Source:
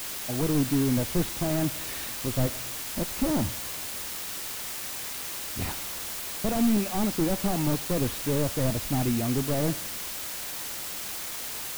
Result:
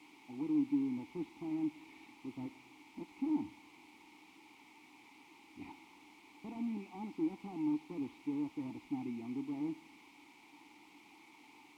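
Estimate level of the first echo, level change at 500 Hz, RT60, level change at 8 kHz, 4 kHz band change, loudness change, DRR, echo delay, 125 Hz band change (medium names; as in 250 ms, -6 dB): no echo, -18.5 dB, no reverb, under -35 dB, -26.5 dB, -11.5 dB, no reverb, no echo, -24.0 dB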